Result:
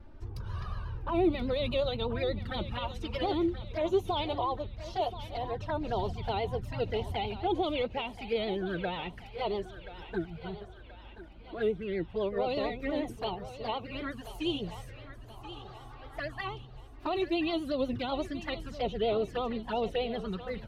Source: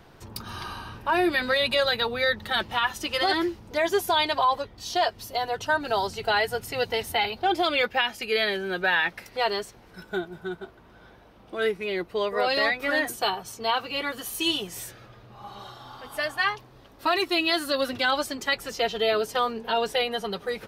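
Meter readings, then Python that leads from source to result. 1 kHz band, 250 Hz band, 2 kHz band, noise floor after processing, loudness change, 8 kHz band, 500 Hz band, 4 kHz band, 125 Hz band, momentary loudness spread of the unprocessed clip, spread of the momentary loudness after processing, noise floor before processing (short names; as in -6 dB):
-9.0 dB, -1.0 dB, -16.0 dB, -49 dBFS, -7.5 dB, under -20 dB, -4.5 dB, -12.5 dB, +5.5 dB, 14 LU, 15 LU, -52 dBFS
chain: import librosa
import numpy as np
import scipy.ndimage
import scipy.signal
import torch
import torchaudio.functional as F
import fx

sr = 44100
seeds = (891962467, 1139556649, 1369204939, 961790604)

p1 = fx.vibrato(x, sr, rate_hz=8.3, depth_cents=99.0)
p2 = fx.env_flanger(p1, sr, rest_ms=3.7, full_db=-22.5)
p3 = fx.riaa(p2, sr, side='playback')
p4 = p3 + fx.echo_thinned(p3, sr, ms=1029, feedback_pct=52, hz=470.0, wet_db=-12, dry=0)
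y = F.gain(torch.from_numpy(p4), -6.0).numpy()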